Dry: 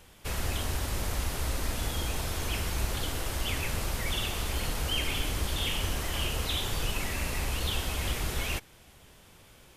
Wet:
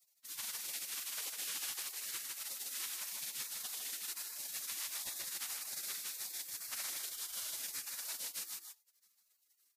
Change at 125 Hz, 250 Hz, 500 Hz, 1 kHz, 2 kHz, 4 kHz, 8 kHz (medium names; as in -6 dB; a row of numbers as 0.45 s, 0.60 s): under -40 dB, -28.5 dB, -24.5 dB, -17.5 dB, -13.5 dB, -10.5 dB, -2.0 dB